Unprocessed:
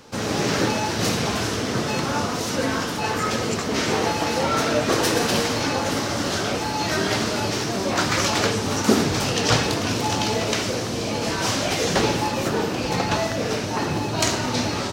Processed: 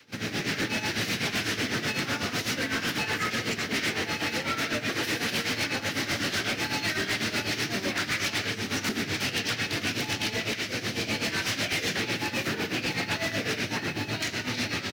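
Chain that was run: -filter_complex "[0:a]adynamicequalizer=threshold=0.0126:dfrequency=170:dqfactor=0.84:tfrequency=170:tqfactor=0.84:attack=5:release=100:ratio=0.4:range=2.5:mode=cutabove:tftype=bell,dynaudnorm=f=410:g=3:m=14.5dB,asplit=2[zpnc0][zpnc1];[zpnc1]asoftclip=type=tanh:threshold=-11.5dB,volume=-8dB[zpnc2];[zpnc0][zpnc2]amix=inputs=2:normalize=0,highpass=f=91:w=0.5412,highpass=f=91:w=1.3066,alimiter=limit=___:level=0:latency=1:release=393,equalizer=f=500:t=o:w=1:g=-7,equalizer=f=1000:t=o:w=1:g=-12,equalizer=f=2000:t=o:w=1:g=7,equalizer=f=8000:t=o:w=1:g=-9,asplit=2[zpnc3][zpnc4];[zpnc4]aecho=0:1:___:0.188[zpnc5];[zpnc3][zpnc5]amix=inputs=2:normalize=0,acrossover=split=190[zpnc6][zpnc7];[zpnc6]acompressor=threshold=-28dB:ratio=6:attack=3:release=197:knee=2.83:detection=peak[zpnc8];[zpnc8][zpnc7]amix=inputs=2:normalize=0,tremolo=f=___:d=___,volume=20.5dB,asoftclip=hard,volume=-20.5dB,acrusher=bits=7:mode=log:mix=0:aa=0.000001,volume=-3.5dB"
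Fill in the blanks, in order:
-8dB, 890, 8, 0.76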